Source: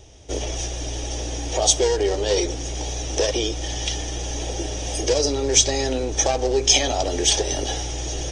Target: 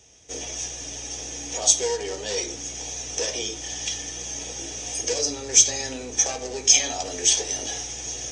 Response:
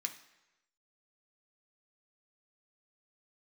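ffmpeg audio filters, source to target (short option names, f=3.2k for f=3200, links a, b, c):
-filter_complex "[0:a]equalizer=f=6.4k:w=6.2:g=7.5[a];[1:a]atrim=start_sample=2205,atrim=end_sample=4410[b];[a][b]afir=irnorm=-1:irlink=0,volume=-3.5dB"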